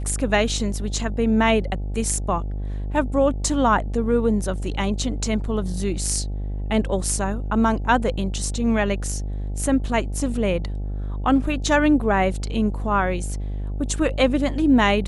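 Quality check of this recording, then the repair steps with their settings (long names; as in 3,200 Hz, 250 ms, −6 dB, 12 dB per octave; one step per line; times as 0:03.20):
mains buzz 50 Hz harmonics 17 −27 dBFS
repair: hum removal 50 Hz, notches 17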